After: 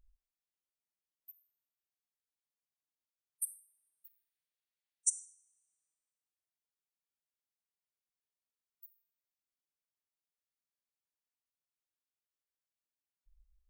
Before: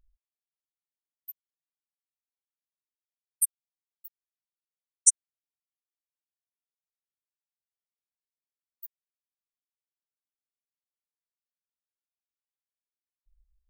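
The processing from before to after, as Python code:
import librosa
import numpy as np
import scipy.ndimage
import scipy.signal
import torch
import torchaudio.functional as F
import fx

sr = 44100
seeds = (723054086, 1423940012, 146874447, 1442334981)

y = fx.band_shelf(x, sr, hz=2700.0, db=8.0, octaves=1.7, at=(4.06, 5.08))
y = fx.rev_double_slope(y, sr, seeds[0], early_s=0.46, late_s=1.6, knee_db=-24, drr_db=19.0)
y = fx.hpss(y, sr, part='percussive', gain_db=-12)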